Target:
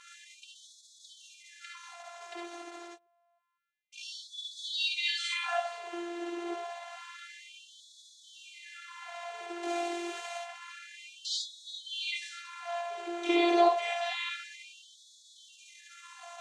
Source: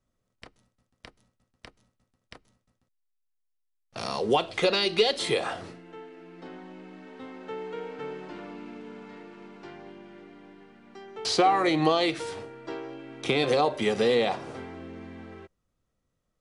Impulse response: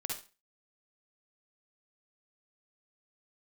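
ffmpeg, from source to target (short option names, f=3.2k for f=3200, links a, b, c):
-filter_complex "[0:a]aeval=exprs='val(0)+0.5*0.0224*sgn(val(0))':c=same,asettb=1/sr,asplit=3[a][b][c];[a]atrim=end=9.634[d];[b]atrim=start=9.63:end=10.38,asetpts=PTS-STARTPTS,afade=t=in:d=0.004:c=qsin,afade=t=out:st=0.746:d=0.004:c=qsin,highshelf=f=3.4k:g=12[e];[c]atrim=start=10.376[f];[d][e]acrossfade=d=0.004:c1=hsin:c2=qsin[g];[g][f]acrossfade=d=0.004:c1=qsin:c2=hsin[h];[1:a]atrim=start_sample=2205,afade=t=out:st=0.15:d=0.01,atrim=end_sample=7056[i];[h][i]afir=irnorm=-1:irlink=0,afftfilt=real='hypot(re,im)*cos(PI*b)':imag='0':win_size=512:overlap=0.75,highpass=110,equalizer=f=210:t=q:w=4:g=-10,equalizer=f=330:t=q:w=4:g=4,equalizer=f=530:t=q:w=4:g=-9,equalizer=f=750:t=q:w=4:g=10,equalizer=f=5k:t=q:w=4:g=-9,lowpass=f=7.2k:w=0.5412,lowpass=f=7.2k:w=1.3066,afftfilt=real='re*gte(b*sr/1024,290*pow(3400/290,0.5+0.5*sin(2*PI*0.28*pts/sr)))':imag='im*gte(b*sr/1024,290*pow(3400/290,0.5+0.5*sin(2*PI*0.28*pts/sr)))':win_size=1024:overlap=0.75"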